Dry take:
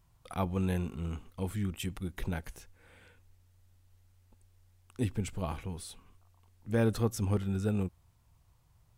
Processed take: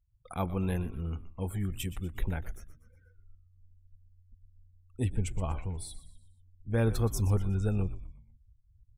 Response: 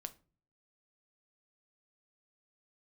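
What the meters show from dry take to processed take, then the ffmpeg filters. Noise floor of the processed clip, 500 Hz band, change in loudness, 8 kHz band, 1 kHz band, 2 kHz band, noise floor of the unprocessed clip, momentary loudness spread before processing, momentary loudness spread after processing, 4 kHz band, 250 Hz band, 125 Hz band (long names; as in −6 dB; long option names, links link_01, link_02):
−64 dBFS, −0.5 dB, +1.0 dB, +1.5 dB, 0.0 dB, −0.5 dB, −66 dBFS, 12 LU, 18 LU, −0.5 dB, −1.5 dB, +3.0 dB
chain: -filter_complex "[0:a]highshelf=frequency=9700:gain=7,afftdn=noise_reduction=35:noise_floor=-50,asplit=5[link_01][link_02][link_03][link_04][link_05];[link_02]adelay=121,afreqshift=-81,volume=-15dB[link_06];[link_03]adelay=242,afreqshift=-162,volume=-22.5dB[link_07];[link_04]adelay=363,afreqshift=-243,volume=-30.1dB[link_08];[link_05]adelay=484,afreqshift=-324,volume=-37.6dB[link_09];[link_01][link_06][link_07][link_08][link_09]amix=inputs=5:normalize=0,asubboost=boost=3:cutoff=100"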